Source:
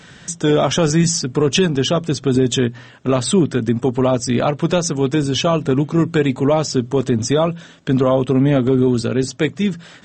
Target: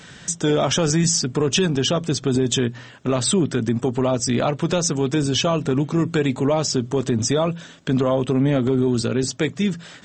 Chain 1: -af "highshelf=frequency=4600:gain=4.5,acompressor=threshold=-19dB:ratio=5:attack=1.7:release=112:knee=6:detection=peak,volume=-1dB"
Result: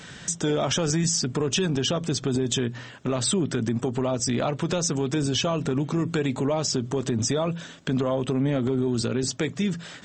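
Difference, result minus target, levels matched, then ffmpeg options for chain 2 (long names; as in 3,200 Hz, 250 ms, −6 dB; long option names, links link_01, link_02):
downward compressor: peak gain reduction +6 dB
-af "highshelf=frequency=4600:gain=4.5,acompressor=threshold=-11.5dB:ratio=5:attack=1.7:release=112:knee=6:detection=peak,volume=-1dB"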